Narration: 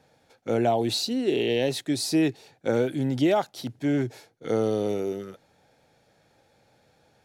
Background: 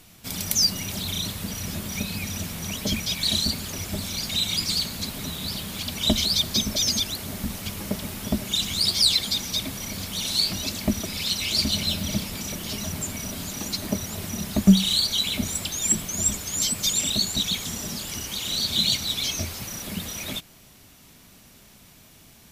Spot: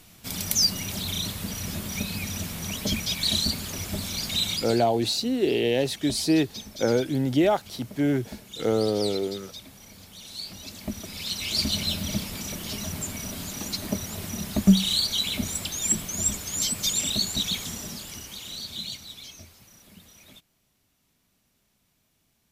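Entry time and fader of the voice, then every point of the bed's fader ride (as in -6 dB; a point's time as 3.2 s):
4.15 s, +1.0 dB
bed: 4.5 s -1 dB
4.85 s -15.5 dB
10.25 s -15.5 dB
11.63 s -2 dB
17.59 s -2 dB
19.57 s -19 dB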